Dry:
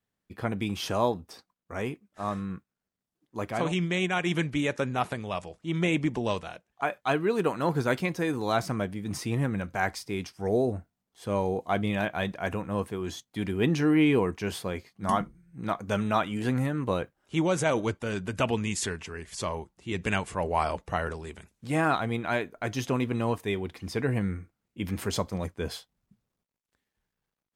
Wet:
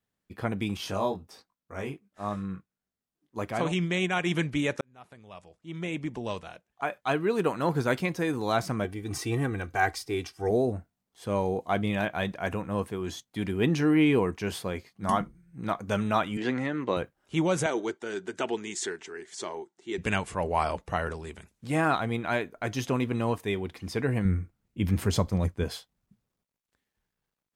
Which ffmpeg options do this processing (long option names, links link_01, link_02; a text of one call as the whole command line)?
ffmpeg -i in.wav -filter_complex "[0:a]asettb=1/sr,asplit=3[link_01][link_02][link_03];[link_01]atrim=end=0.774[link_04];[link_02]atrim=start=0.77:end=3.37,asetpts=PTS-STARTPTS,afade=type=in:duration=0.004:curve=qsin,afade=type=out:start_time=2.596:duration=0.004:curve=qsin,flanger=delay=19.5:depth=2.2:speed=1.3[link_05];[link_03]atrim=start=3.366[link_06];[link_04][link_05]acrossfade=duration=0.004:curve1=hsin:curve2=qsin[link_07];[link_07][link_06]acrossfade=duration=0.004:curve1=qsin:curve2=hsin,asettb=1/sr,asplit=3[link_08][link_09][link_10];[link_08]atrim=end=8.844[link_11];[link_09]atrim=start=8.84:end=10.51,asetpts=PTS-STARTPTS,afade=type=in:duration=0.004:curve=qsin,afade=type=out:start_time=1.666:duration=0.004:curve=qsin,aecho=1:1:2.6:0.65,atrim=end_sample=73647[link_12];[link_10]atrim=start=10.506[link_13];[link_11][link_12]acrossfade=duration=0.004:curve1=hsin:curve2=qsin[link_14];[link_14][link_13]acrossfade=duration=0.004:curve1=qsin:curve2=hsin,asettb=1/sr,asplit=3[link_15][link_16][link_17];[link_15]atrim=end=16.374[link_18];[link_16]atrim=start=16.37:end=16.97,asetpts=PTS-STARTPTS,afade=type=in:duration=0.004:curve=qsin,afade=type=out:start_time=0.596:duration=0.004:curve=qsin,highpass=220,equalizer=frequency=350:width_type=q:width=4:gain=4,equalizer=frequency=2000:width_type=q:width=4:gain=7,equalizer=frequency=3300:width_type=q:width=4:gain=4,lowpass=frequency=6500:width=0.5412,lowpass=frequency=6500:width=1.3066[link_19];[link_17]atrim=start=16.966[link_20];[link_18][link_19]acrossfade=duration=0.004:curve1=hsin:curve2=qsin[link_21];[link_21][link_20]acrossfade=duration=0.004:curve1=qsin:curve2=hsin,asettb=1/sr,asplit=3[link_22][link_23][link_24];[link_22]atrim=end=17.664[link_25];[link_23]atrim=start=17.66:end=19.98,asetpts=PTS-STARTPTS,afade=type=in:duration=0.004:curve=qsin,afade=type=out:start_time=2.316:duration=0.004:curve=qsin,highpass=370,equalizer=frequency=370:width_type=q:width=4:gain=9,equalizer=frequency=550:width_type=q:width=4:gain=-9,equalizer=frequency=1100:width_type=q:width=4:gain=-7,equalizer=frequency=2600:width_type=q:width=4:gain=-8,equalizer=frequency=4800:width_type=q:width=4:gain=-4,lowpass=frequency=8300:width=0.5412,lowpass=frequency=8300:width=1.3066[link_26];[link_24]atrim=start=19.976[link_27];[link_25][link_26]acrossfade=duration=0.004:curve1=hsin:curve2=qsin[link_28];[link_28][link_27]acrossfade=duration=0.004:curve1=qsin:curve2=hsin,asettb=1/sr,asplit=3[link_29][link_30][link_31];[link_29]atrim=end=24.254[link_32];[link_30]atrim=start=24.25:end=25.64,asetpts=PTS-STARTPTS,afade=type=in:duration=0.004:curve=qsin,afade=type=out:start_time=1.386:duration=0.004:curve=qsin,lowshelf=frequency=170:gain=11.5[link_33];[link_31]atrim=start=25.636[link_34];[link_32][link_33]acrossfade=duration=0.004:curve1=hsin:curve2=qsin[link_35];[link_35][link_34]acrossfade=duration=0.004:curve1=qsin:curve2=hsin,asplit=2[link_36][link_37];[link_36]atrim=end=4.81,asetpts=PTS-STARTPTS,afade=type=out:start_time=4.806:duration=0.004:curve=hsin[link_38];[link_37]atrim=start=4.81,asetpts=PTS-STARTPTS,afade=type=in:duration=2.58[link_39];[link_38][link_39]concat=n=2:v=0:a=1" out.wav